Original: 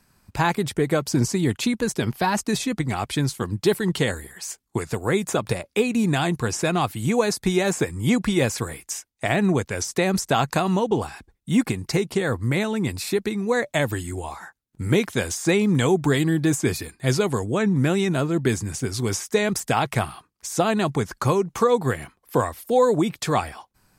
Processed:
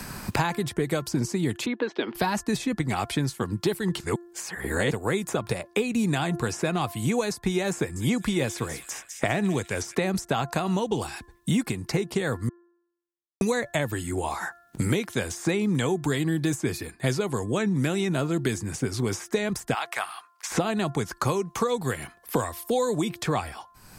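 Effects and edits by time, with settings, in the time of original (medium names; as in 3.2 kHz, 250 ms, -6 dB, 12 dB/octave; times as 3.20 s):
1.66–2.15 s: elliptic band-pass 290–3600 Hz, stop band 50 dB
4.00–4.91 s: reverse
7.76–9.95 s: feedback echo behind a high-pass 199 ms, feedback 37%, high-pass 4 kHz, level -7.5 dB
12.49–13.41 s: mute
19.74–20.51 s: high-pass 1.1 kHz
whole clip: de-hum 346.6 Hz, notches 5; three bands compressed up and down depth 100%; trim -5 dB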